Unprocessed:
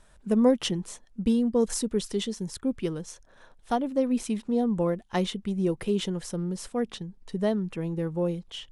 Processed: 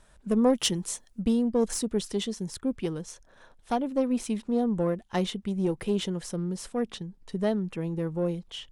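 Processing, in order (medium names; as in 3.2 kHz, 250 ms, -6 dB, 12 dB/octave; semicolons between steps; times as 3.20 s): single-diode clipper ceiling -18.5 dBFS; 0.53–1.22 s: treble shelf 4.5 kHz +11.5 dB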